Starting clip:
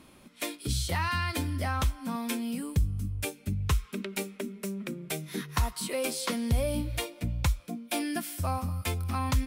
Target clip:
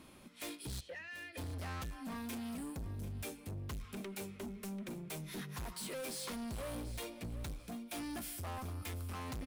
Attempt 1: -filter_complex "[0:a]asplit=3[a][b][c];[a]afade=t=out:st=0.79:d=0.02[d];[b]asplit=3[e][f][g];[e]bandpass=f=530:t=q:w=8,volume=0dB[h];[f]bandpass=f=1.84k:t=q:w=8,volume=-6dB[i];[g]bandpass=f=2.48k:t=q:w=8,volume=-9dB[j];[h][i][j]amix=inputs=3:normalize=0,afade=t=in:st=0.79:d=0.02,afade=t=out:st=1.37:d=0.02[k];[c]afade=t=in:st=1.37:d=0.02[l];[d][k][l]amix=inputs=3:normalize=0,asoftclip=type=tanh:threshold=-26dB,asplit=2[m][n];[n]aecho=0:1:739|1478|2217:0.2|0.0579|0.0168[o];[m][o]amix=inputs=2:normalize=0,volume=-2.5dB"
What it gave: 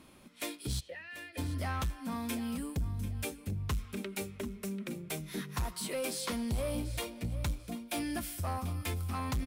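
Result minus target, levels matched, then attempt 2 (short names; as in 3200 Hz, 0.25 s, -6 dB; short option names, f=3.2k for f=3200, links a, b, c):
soft clip: distortion -8 dB
-filter_complex "[0:a]asplit=3[a][b][c];[a]afade=t=out:st=0.79:d=0.02[d];[b]asplit=3[e][f][g];[e]bandpass=f=530:t=q:w=8,volume=0dB[h];[f]bandpass=f=1.84k:t=q:w=8,volume=-6dB[i];[g]bandpass=f=2.48k:t=q:w=8,volume=-9dB[j];[h][i][j]amix=inputs=3:normalize=0,afade=t=in:st=0.79:d=0.02,afade=t=out:st=1.37:d=0.02[k];[c]afade=t=in:st=1.37:d=0.02[l];[d][k][l]amix=inputs=3:normalize=0,asoftclip=type=tanh:threshold=-38dB,asplit=2[m][n];[n]aecho=0:1:739|1478|2217:0.2|0.0579|0.0168[o];[m][o]amix=inputs=2:normalize=0,volume=-2.5dB"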